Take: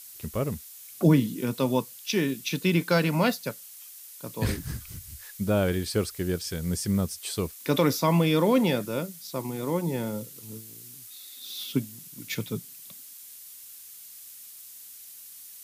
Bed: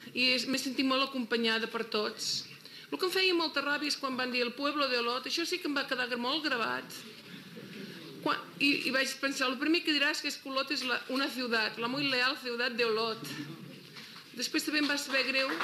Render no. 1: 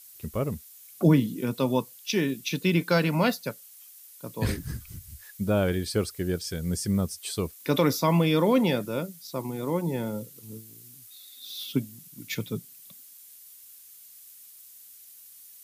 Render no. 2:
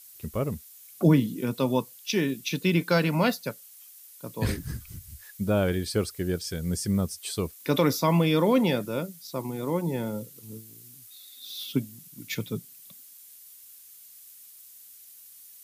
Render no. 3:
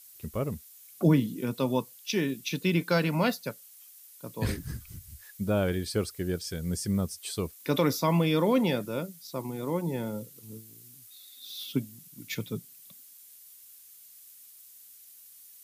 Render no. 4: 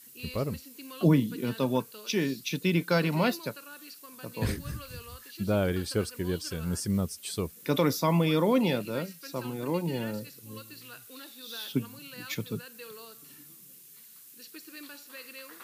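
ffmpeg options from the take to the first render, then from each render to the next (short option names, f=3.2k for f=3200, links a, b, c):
-af "afftdn=nr=6:nf=-46"
-af anull
-af "volume=-2.5dB"
-filter_complex "[1:a]volume=-16.5dB[a];[0:a][a]amix=inputs=2:normalize=0"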